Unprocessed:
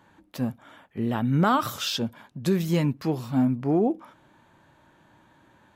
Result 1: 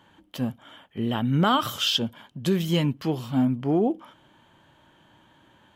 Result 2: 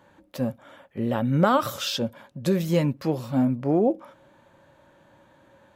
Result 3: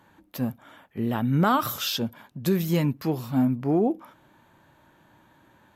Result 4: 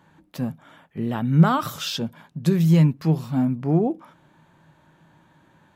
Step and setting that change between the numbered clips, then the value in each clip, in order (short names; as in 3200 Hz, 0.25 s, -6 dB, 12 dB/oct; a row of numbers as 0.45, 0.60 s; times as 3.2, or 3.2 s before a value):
bell, frequency: 3100, 550, 13000, 160 Hz